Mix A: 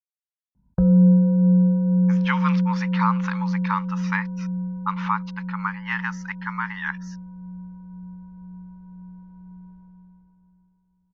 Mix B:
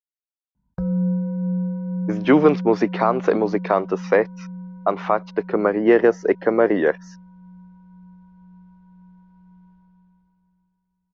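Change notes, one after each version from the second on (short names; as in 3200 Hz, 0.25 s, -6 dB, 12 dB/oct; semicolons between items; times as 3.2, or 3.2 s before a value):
speech: remove brick-wall FIR high-pass 830 Hz; background: add tilt shelf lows -7.5 dB, about 1300 Hz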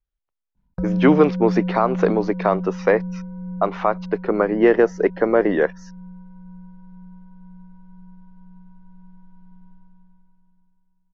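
speech: entry -1.25 s; master: remove HPF 51 Hz 12 dB/oct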